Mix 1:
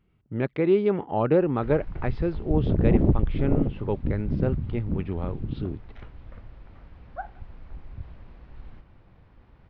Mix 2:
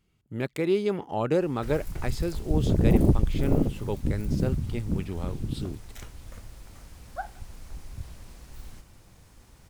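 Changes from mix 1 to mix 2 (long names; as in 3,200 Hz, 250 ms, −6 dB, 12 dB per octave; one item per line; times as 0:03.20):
speech −4.0 dB
master: remove Gaussian smoothing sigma 3.1 samples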